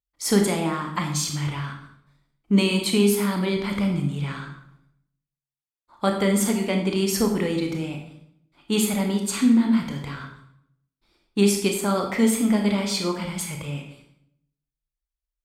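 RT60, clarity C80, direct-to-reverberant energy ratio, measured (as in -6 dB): 0.70 s, 8.5 dB, 2.5 dB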